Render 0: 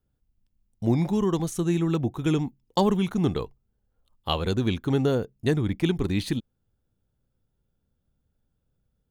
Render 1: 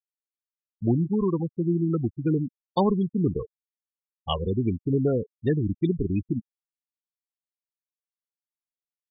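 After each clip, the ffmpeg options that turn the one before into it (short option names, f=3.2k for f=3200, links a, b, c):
-af "afftfilt=real='re*gte(hypot(re,im),0.112)':imag='im*gte(hypot(re,im),0.112)':win_size=1024:overlap=0.75"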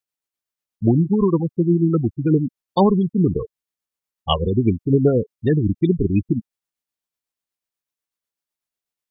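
-af "tremolo=f=8.1:d=0.36,volume=8.5dB"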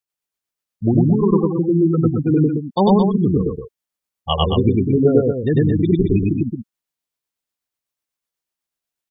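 -af "aecho=1:1:99.13|221.6:1|0.501,volume=-1dB"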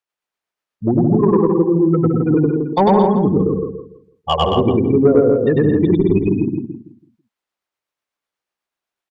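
-filter_complex "[0:a]asplit=2[a][b];[b]highpass=f=720:p=1,volume=14dB,asoftclip=type=tanh:threshold=-1.5dB[c];[a][c]amix=inputs=2:normalize=0,lowpass=f=1.5k:p=1,volume=-6dB,asplit=2[d][e];[e]adelay=165,lowpass=f=1.2k:p=1,volume=-4dB,asplit=2[f][g];[g]adelay=165,lowpass=f=1.2k:p=1,volume=0.27,asplit=2[h][i];[i]adelay=165,lowpass=f=1.2k:p=1,volume=0.27,asplit=2[j][k];[k]adelay=165,lowpass=f=1.2k:p=1,volume=0.27[l];[d][f][h][j][l]amix=inputs=5:normalize=0"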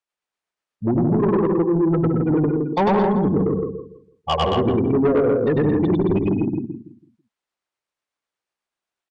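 -af "asoftclip=type=tanh:threshold=-11dB,aresample=22050,aresample=44100,volume=-1.5dB"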